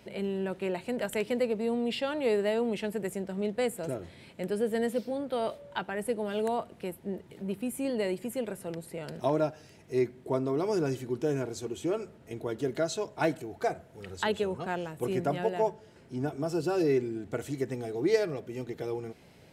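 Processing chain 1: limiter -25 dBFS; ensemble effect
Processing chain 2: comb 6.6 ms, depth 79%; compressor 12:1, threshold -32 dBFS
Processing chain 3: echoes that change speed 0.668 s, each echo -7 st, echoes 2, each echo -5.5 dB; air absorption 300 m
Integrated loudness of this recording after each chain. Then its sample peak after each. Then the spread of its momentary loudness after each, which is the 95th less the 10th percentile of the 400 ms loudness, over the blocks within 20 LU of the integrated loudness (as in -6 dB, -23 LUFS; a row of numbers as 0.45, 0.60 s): -38.5, -37.5, -32.0 LUFS; -23.5, -16.5, -14.5 dBFS; 9, 5, 7 LU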